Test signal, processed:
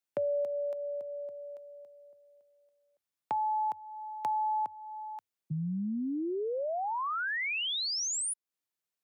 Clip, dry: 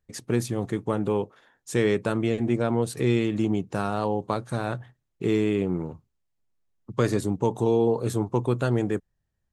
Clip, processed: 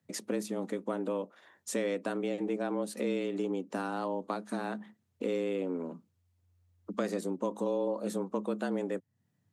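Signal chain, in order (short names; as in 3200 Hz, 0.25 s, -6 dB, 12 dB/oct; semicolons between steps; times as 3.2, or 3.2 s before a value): compressor 2:1, threshold -41 dBFS; frequency shift +88 Hz; gain +2.5 dB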